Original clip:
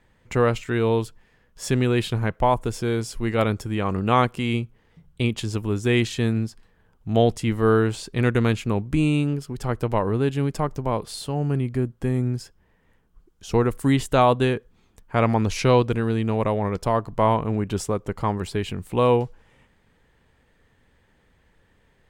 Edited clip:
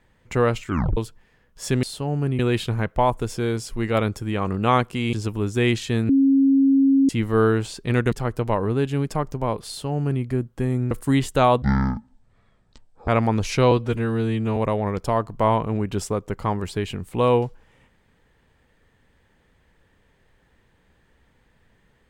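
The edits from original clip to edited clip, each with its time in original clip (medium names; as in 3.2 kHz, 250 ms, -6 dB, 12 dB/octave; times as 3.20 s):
0.67 s: tape stop 0.30 s
4.57–5.42 s: delete
6.38–7.38 s: bleep 272 Hz -13 dBFS
8.41–9.56 s: delete
11.11–11.67 s: copy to 1.83 s
12.35–13.68 s: delete
14.39–15.15 s: speed 52%
15.78–16.35 s: stretch 1.5×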